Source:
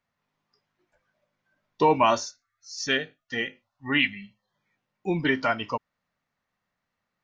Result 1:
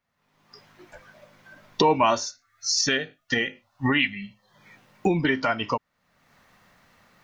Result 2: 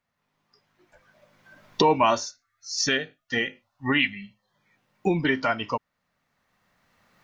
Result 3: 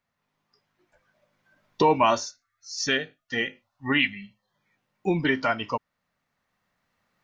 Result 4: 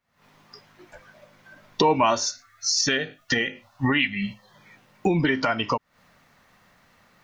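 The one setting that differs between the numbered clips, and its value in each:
camcorder AGC, rising by: 37, 13, 5.4, 91 dB per second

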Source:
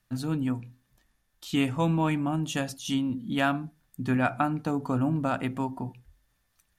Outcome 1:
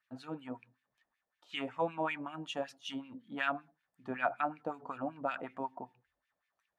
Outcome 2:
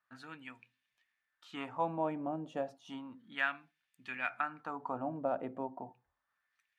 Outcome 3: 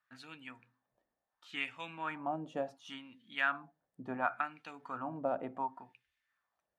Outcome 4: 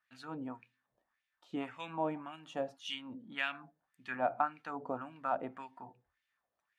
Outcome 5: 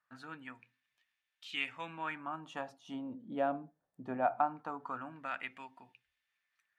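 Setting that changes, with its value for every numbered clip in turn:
LFO wah, speed: 5.3, 0.32, 0.7, 1.8, 0.21 Hertz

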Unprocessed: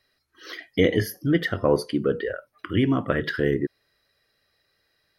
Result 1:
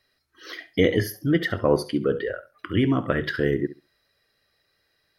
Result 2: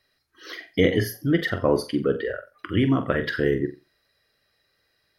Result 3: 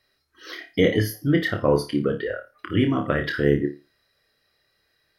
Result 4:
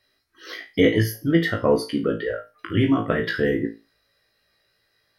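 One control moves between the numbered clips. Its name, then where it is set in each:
flutter between parallel walls, walls apart: 11.7, 7.6, 4.8, 3.1 metres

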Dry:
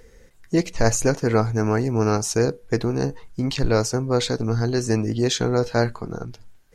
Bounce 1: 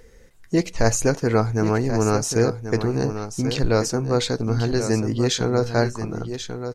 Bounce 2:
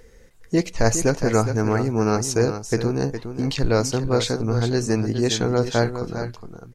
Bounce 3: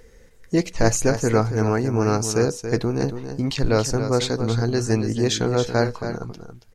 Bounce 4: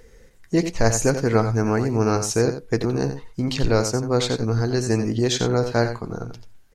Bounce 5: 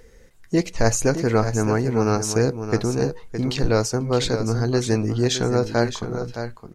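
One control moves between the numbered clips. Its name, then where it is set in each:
single-tap delay, delay time: 1,086, 411, 278, 88, 616 milliseconds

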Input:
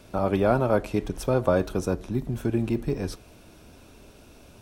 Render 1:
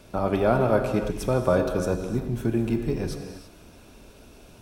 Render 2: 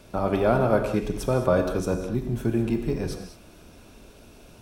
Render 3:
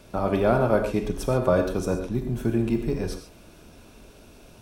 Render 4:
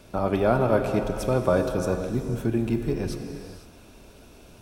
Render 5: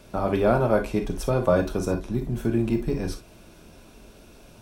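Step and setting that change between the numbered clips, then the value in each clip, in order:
reverb whose tail is shaped and stops, gate: 360, 240, 160, 540, 80 milliseconds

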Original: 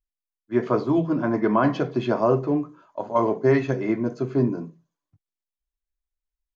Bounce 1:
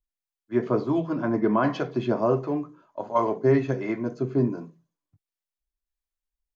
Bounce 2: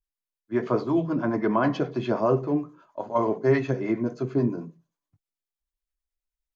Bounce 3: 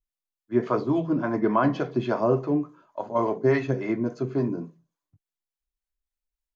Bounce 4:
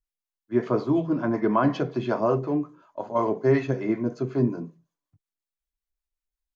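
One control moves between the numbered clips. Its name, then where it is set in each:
two-band tremolo in antiphase, speed: 1.4, 9.4, 3.5, 5.4 Hertz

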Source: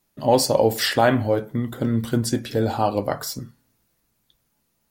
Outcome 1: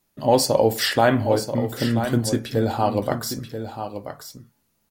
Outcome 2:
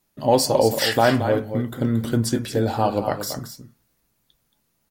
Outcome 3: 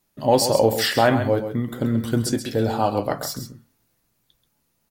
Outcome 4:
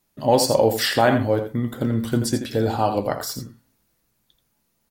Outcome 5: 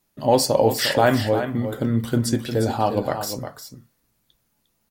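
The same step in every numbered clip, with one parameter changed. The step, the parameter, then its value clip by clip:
single-tap delay, delay time: 984, 226, 133, 83, 354 milliseconds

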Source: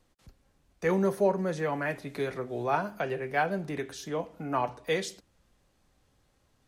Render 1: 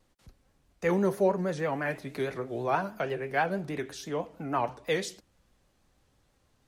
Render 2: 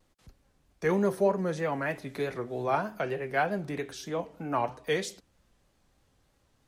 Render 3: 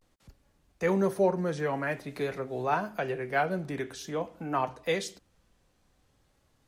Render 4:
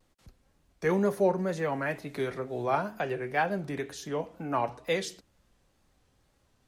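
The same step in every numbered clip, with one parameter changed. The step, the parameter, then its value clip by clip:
pitch vibrato, speed: 6.2, 3.2, 0.49, 2.1 Hertz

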